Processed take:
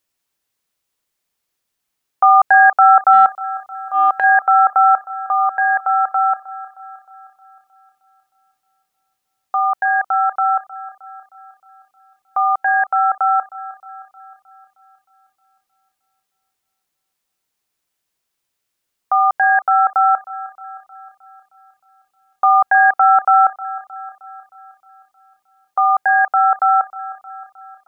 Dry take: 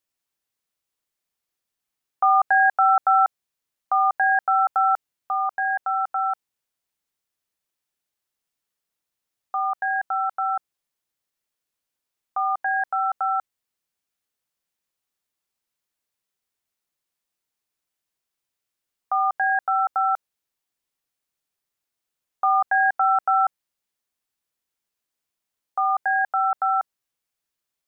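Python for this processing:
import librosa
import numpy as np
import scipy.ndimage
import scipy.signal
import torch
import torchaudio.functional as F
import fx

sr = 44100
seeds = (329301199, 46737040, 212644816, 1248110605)

y = fx.transient(x, sr, attack_db=-12, sustain_db=4, at=(3.12, 4.24))
y = fx.echo_wet_bandpass(y, sr, ms=311, feedback_pct=55, hz=850.0, wet_db=-18)
y = y * librosa.db_to_amplitude(7.5)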